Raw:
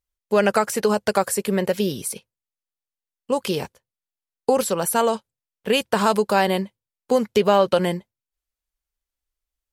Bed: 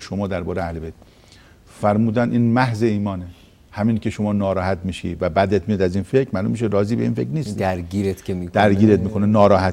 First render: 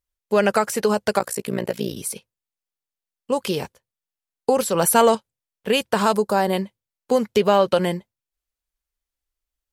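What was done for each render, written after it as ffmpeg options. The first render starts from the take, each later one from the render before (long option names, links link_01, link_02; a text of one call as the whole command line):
ffmpeg -i in.wav -filter_complex "[0:a]asettb=1/sr,asplit=3[link_01][link_02][link_03];[link_01]atrim=end=1.194[link_04];[link_02]atrim=start=1.19:end=1.97,asetpts=PTS-STARTPTS,afade=type=in:duration=0.004:curve=qsin,afade=type=out:start_time=0.776:duration=0.004:curve=qsin,tremolo=f=58:d=0.947[link_05];[link_03]atrim=start=1.966[link_06];[link_04][link_05]acrossfade=duration=0.004:curve1=hsin:curve2=qsin[link_07];[link_07][link_06]acrossfade=duration=0.004:curve1=qsin:curve2=hsin,asettb=1/sr,asplit=3[link_08][link_09][link_10];[link_08]atrim=end=4.744[link_11];[link_09]atrim=start=4.74:end=5.15,asetpts=PTS-STARTPTS,afade=type=in:duration=0.004:curve=qsin,afade=type=out:start_time=0.406:duration=0.004:curve=qsin,acontrast=30[link_12];[link_10]atrim=start=5.146[link_13];[link_11][link_12]acrossfade=duration=0.004:curve1=hsin:curve2=qsin[link_14];[link_14][link_13]acrossfade=duration=0.004:curve1=qsin:curve2=hsin,asettb=1/sr,asplit=3[link_15][link_16][link_17];[link_15]atrim=end=6.134[link_18];[link_16]atrim=start=6.13:end=6.53,asetpts=PTS-STARTPTS,afade=type=in:duration=0.004:curve=qsin,afade=type=out:start_time=0.396:duration=0.004:curve=qsin,equalizer=frequency=2700:width_type=o:width=1.3:gain=-10[link_19];[link_17]atrim=start=6.526[link_20];[link_18][link_19]acrossfade=duration=0.004:curve1=hsin:curve2=qsin[link_21];[link_21][link_20]acrossfade=duration=0.004:curve1=qsin:curve2=hsin" out.wav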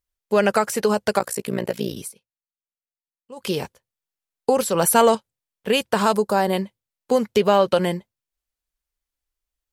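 ffmpeg -i in.wav -filter_complex "[0:a]asplit=3[link_01][link_02][link_03];[link_01]atrim=end=2.12,asetpts=PTS-STARTPTS,afade=type=out:start_time=1.95:duration=0.17:curve=qsin:silence=0.125893[link_04];[link_02]atrim=start=2.12:end=3.36,asetpts=PTS-STARTPTS,volume=-18dB[link_05];[link_03]atrim=start=3.36,asetpts=PTS-STARTPTS,afade=type=in:duration=0.17:curve=qsin:silence=0.125893[link_06];[link_04][link_05][link_06]concat=n=3:v=0:a=1" out.wav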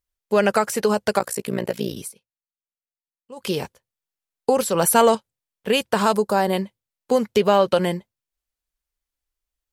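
ffmpeg -i in.wav -af anull out.wav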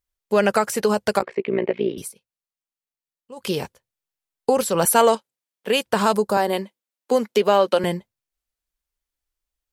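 ffmpeg -i in.wav -filter_complex "[0:a]asettb=1/sr,asplit=3[link_01][link_02][link_03];[link_01]atrim=end=1.224[link_04];[link_02]atrim=start=1.22:end=1.98,asetpts=PTS-STARTPTS,afade=type=in:duration=0.004:curve=qsin,afade=type=out:start_time=0.756:duration=0.004:curve=qsin,highpass=190,equalizer=frequency=380:width_type=q:width=4:gain=9,equalizer=frequency=1500:width_type=q:width=4:gain=-6,equalizer=frequency=2200:width_type=q:width=4:gain=8,lowpass=frequency=2900:width=0.5412,lowpass=frequency=2900:width=1.3066[link_05];[link_03]atrim=start=1.976[link_06];[link_04][link_05]acrossfade=duration=0.004:curve1=hsin:curve2=qsin[link_07];[link_07][link_06]acrossfade=duration=0.004:curve1=qsin:curve2=hsin,asettb=1/sr,asplit=3[link_08][link_09][link_10];[link_08]atrim=end=4.854[link_11];[link_09]atrim=start=4.85:end=5.86,asetpts=PTS-STARTPTS,afade=type=in:duration=0.004:curve=qsin,afade=type=out:start_time=1.006:duration=0.004:curve=qsin,highpass=250[link_12];[link_10]atrim=start=5.856[link_13];[link_11][link_12]acrossfade=duration=0.004:curve1=hsin:curve2=qsin[link_14];[link_14][link_13]acrossfade=duration=0.004:curve1=qsin:curve2=hsin,asettb=1/sr,asplit=3[link_15][link_16][link_17];[link_15]atrim=end=6.374[link_18];[link_16]atrim=start=6.37:end=7.84,asetpts=PTS-STARTPTS,afade=type=in:duration=0.004:curve=qsin,afade=type=out:start_time=1.466:duration=0.004:curve=qsin,highpass=frequency=220:width=0.5412,highpass=frequency=220:width=1.3066[link_19];[link_17]atrim=start=7.836[link_20];[link_18][link_19]acrossfade=duration=0.004:curve1=hsin:curve2=qsin[link_21];[link_21][link_20]acrossfade=duration=0.004:curve1=qsin:curve2=hsin" out.wav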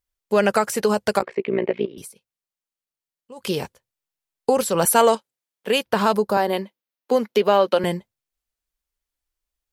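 ffmpeg -i in.wav -filter_complex "[0:a]asettb=1/sr,asplit=3[link_01][link_02][link_03];[link_01]atrim=end=1.854[link_04];[link_02]atrim=start=1.85:end=3.41,asetpts=PTS-STARTPTS,afade=type=in:duration=0.004:curve=qsin,afade=type=out:start_time=1.556:duration=0.004:curve=qsin,acompressor=threshold=-34dB:ratio=6:attack=3.2:release=140:knee=1:detection=peak[link_05];[link_03]atrim=start=3.406[link_06];[link_04][link_05]acrossfade=duration=0.004:curve1=hsin:curve2=qsin[link_07];[link_07][link_06]acrossfade=duration=0.004:curve1=qsin:curve2=hsin,asettb=1/sr,asplit=3[link_08][link_09][link_10];[link_08]atrim=end=5.784[link_11];[link_09]atrim=start=5.78:end=7.85,asetpts=PTS-STARTPTS,afade=type=in:duration=0.004:curve=qsin,afade=type=out:start_time=2.066:duration=0.004:curve=qsin,equalizer=frequency=8100:width_type=o:width=0.66:gain=-9[link_12];[link_10]atrim=start=7.846[link_13];[link_11][link_12]acrossfade=duration=0.004:curve1=hsin:curve2=qsin[link_14];[link_14][link_13]acrossfade=duration=0.004:curve1=qsin:curve2=hsin" out.wav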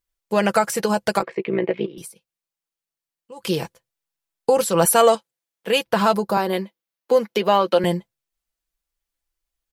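ffmpeg -i in.wav -af "aecho=1:1:6:0.5" out.wav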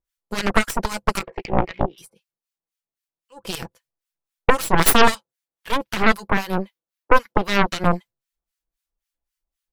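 ffmpeg -i in.wav -filter_complex "[0:a]acrossover=split=1100[link_01][link_02];[link_01]aeval=exprs='val(0)*(1-1/2+1/2*cos(2*PI*3.8*n/s))':channel_layout=same[link_03];[link_02]aeval=exprs='val(0)*(1-1/2-1/2*cos(2*PI*3.8*n/s))':channel_layout=same[link_04];[link_03][link_04]amix=inputs=2:normalize=0,aeval=exprs='0.501*(cos(1*acos(clip(val(0)/0.501,-1,1)))-cos(1*PI/2))+0.224*(cos(6*acos(clip(val(0)/0.501,-1,1)))-cos(6*PI/2))+0.158*(cos(7*acos(clip(val(0)/0.501,-1,1)))-cos(7*PI/2))':channel_layout=same" out.wav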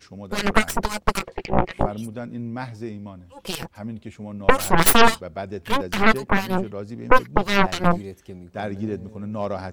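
ffmpeg -i in.wav -i bed.wav -filter_complex "[1:a]volume=-14.5dB[link_01];[0:a][link_01]amix=inputs=2:normalize=0" out.wav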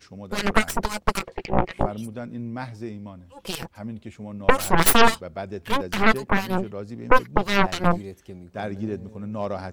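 ffmpeg -i in.wav -af "volume=-1.5dB" out.wav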